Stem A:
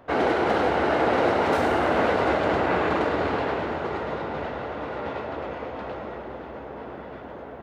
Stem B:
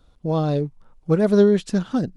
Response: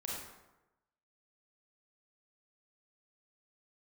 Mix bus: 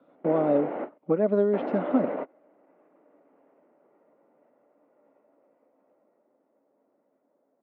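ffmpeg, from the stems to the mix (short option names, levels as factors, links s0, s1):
-filter_complex "[0:a]lowshelf=f=260:g=6.5,alimiter=limit=0.126:level=0:latency=1:release=62,volume=0.376,asplit=3[s0][s1][s2];[s0]atrim=end=0.98,asetpts=PTS-STARTPTS,afade=t=out:st=0.976:d=0.004:c=hsin[s3];[s1]atrim=start=0.98:end=1.53,asetpts=PTS-STARTPTS,volume=0[s4];[s2]atrim=start=1.53,asetpts=PTS-STARTPTS,afade=t=in:d=0.004:c=hsin[s5];[s3][s4][s5]concat=n=3:v=0:a=1[s6];[1:a]acrossover=split=91|550[s7][s8][s9];[s7]acompressor=threshold=0.00158:ratio=4[s10];[s8]acompressor=threshold=0.0447:ratio=4[s11];[s9]acompressor=threshold=0.0251:ratio=4[s12];[s10][s11][s12]amix=inputs=3:normalize=0,volume=1.12,asplit=2[s13][s14];[s14]apad=whole_len=336368[s15];[s6][s15]sidechaingate=range=0.0316:threshold=0.00355:ratio=16:detection=peak[s16];[s16][s13]amix=inputs=2:normalize=0,highpass=f=200:w=0.5412,highpass=f=200:w=1.3066,equalizer=f=280:t=q:w=4:g=7,equalizer=f=580:t=q:w=4:g=9,equalizer=f=1600:t=q:w=4:g=-6,lowpass=f=2200:w=0.5412,lowpass=f=2200:w=1.3066"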